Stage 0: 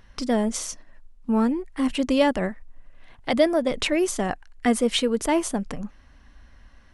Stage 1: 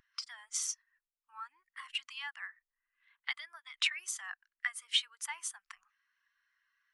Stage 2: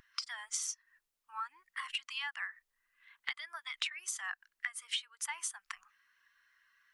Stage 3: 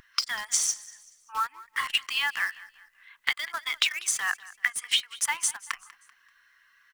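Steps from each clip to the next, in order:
compressor 12:1, threshold -24 dBFS, peak gain reduction 11.5 dB; inverse Chebyshev high-pass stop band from 580 Hz, stop band 40 dB; spectral expander 1.5:1; gain -2 dB
compressor 6:1, threshold -43 dBFS, peak gain reduction 17.5 dB; gain +8 dB
in parallel at -7 dB: bit-crush 7-bit; on the sum: feedback echo 0.193 s, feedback 41%, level -19.5 dB; gain +8.5 dB

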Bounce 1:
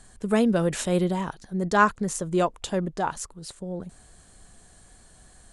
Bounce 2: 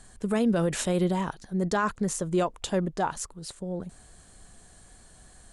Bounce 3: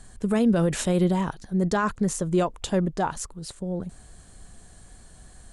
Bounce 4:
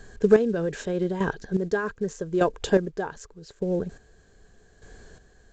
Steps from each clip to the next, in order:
limiter -16.5 dBFS, peak gain reduction 10.5 dB
low shelf 230 Hz +5.5 dB; gain +1 dB
small resonant body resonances 430/1600 Hz, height 14 dB, ringing for 30 ms; chopper 0.83 Hz, depth 65%, duty 30%; µ-law 128 kbps 16000 Hz

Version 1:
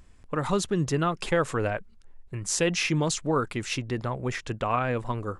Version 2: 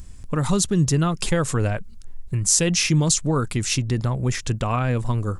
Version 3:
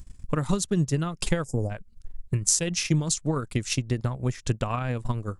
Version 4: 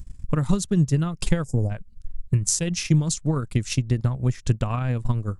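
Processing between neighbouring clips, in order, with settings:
tone controls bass +11 dB, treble +13 dB; in parallel at +2 dB: compressor, threshold -28 dBFS, peak gain reduction 14.5 dB; on the sum: gain -3 dB
spectral delete 1.44–1.7, 890–4700 Hz; transient shaper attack +9 dB, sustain -10 dB; gain -7.5 dB
tone controls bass +7 dB, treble 0 dB; gain -1 dB

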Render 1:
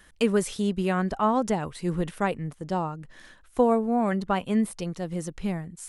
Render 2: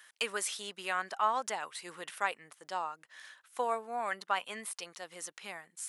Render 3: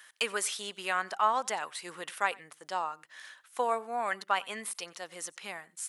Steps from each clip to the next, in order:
HPF 1100 Hz 12 dB/oct
echo 92 ms -24 dB; gain +3 dB

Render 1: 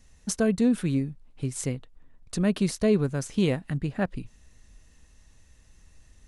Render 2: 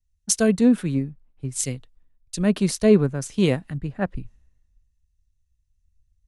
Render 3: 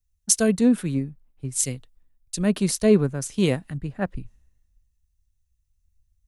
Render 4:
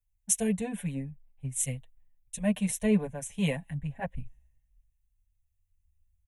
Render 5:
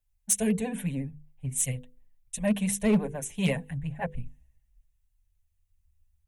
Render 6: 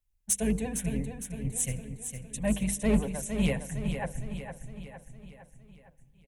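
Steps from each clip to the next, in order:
three-band expander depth 100%; gain +2 dB
high shelf 8900 Hz +10 dB; gain -1.5 dB
fixed phaser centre 1300 Hz, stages 6; endless flanger 6.2 ms -0.4 Hz
vibrato 14 Hz 68 cents; notches 50/100/150/200/250/300/350/400/450/500 Hz; overloaded stage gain 20 dB; gain +3 dB
octaver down 2 oct, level -5 dB; feedback echo 0.459 s, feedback 53%, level -8 dB; on a send at -23 dB: reverb RT60 1.9 s, pre-delay 0.104 s; on the sum: gain -2.5 dB

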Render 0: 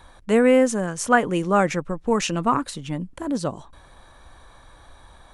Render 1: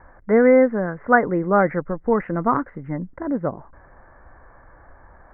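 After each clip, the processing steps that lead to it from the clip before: rippled Chebyshev low-pass 2100 Hz, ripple 3 dB; gain +3 dB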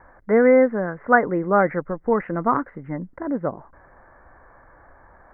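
low shelf 160 Hz -6 dB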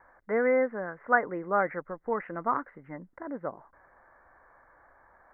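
low shelf 390 Hz -11.5 dB; gain -5.5 dB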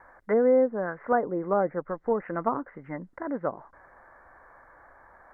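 treble ducked by the level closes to 650 Hz, closed at -25.5 dBFS; gain +5.5 dB

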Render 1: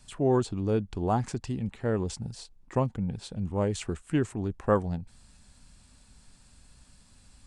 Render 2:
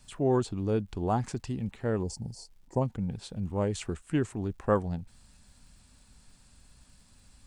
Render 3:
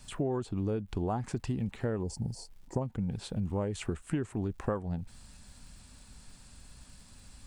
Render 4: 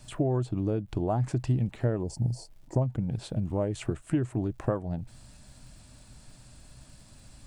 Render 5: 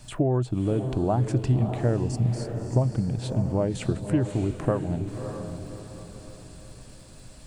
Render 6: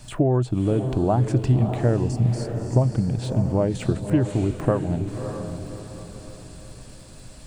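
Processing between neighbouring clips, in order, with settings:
spectral gain 2.03–2.81, 1000–4200 Hz -18 dB; crackle 350/s -59 dBFS; gain -1.5 dB
dynamic EQ 5700 Hz, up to -6 dB, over -56 dBFS, Q 0.78; compressor 12:1, threshold -33 dBFS, peak gain reduction 14.5 dB; gain +5 dB
thirty-one-band EQ 125 Hz +11 dB, 315 Hz +7 dB, 630 Hz +9 dB
diffused feedback echo 0.607 s, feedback 42%, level -7.5 dB; gain +3.5 dB
de-esser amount 95%; gain +3.5 dB

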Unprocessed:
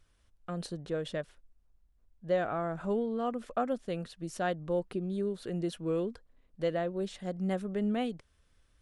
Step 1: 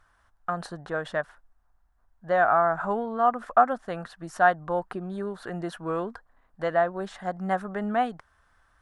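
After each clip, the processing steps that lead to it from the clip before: band shelf 1100 Hz +15.5 dB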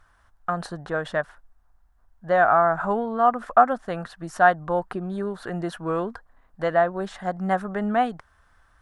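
low shelf 150 Hz +3.5 dB; gain +3 dB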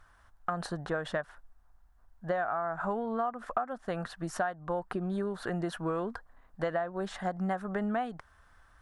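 compressor 16:1, threshold -27 dBFS, peak gain reduction 18 dB; gain -1 dB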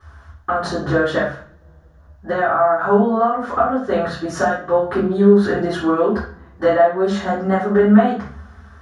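reverb RT60 0.45 s, pre-delay 3 ms, DRR -12.5 dB; gain -6 dB

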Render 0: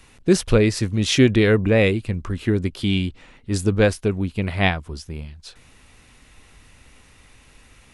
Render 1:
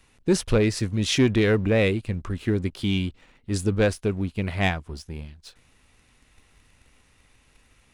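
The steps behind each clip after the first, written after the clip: sample leveller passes 1; gain -7 dB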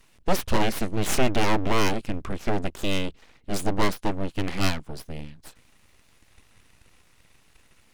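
full-wave rectifier; gain +2 dB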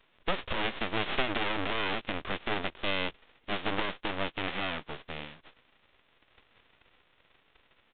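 spectral whitening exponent 0.3; limiter -5.5 dBFS, peak gain reduction 11.5 dB; downsampling 8000 Hz; gain -6.5 dB

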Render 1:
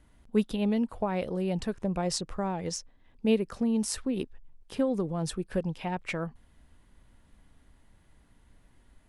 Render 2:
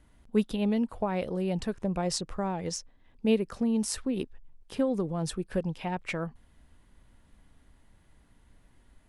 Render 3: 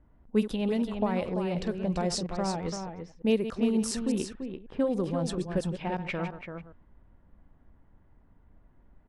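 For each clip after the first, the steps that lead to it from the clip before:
nothing audible
reverse delay 0.103 s, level -11.5 dB; echo 0.338 s -7 dB; low-pass opened by the level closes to 1100 Hz, open at -23 dBFS

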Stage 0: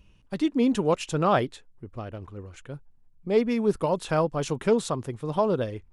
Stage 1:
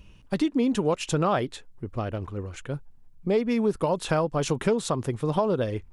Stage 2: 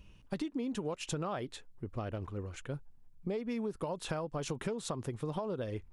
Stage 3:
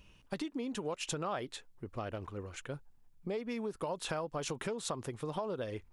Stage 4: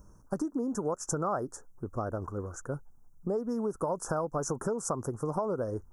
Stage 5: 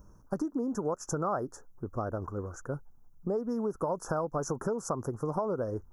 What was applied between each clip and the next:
compressor 4:1, threshold -28 dBFS, peak gain reduction 10.5 dB; gain +6.5 dB
compressor, threshold -27 dBFS, peak gain reduction 8.5 dB; gain -6 dB
low shelf 340 Hz -8 dB; gain +2.5 dB
elliptic band-stop 1400–5900 Hz, stop band 40 dB; gain +6.5 dB
bell 8600 Hz -11 dB 0.48 oct

